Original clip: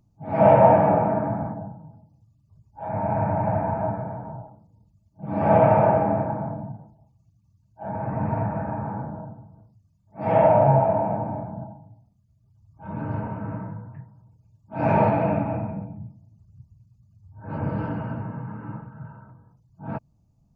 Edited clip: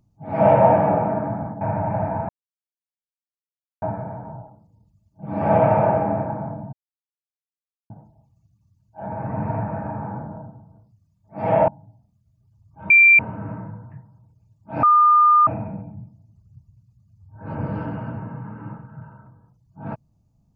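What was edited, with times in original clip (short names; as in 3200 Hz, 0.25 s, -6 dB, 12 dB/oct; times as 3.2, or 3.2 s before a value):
1.61–3.14 cut
3.82 insert silence 1.53 s
6.73 insert silence 1.17 s
10.51–11.71 cut
12.93–13.22 bleep 2360 Hz -8 dBFS
14.86–15.5 bleep 1210 Hz -10.5 dBFS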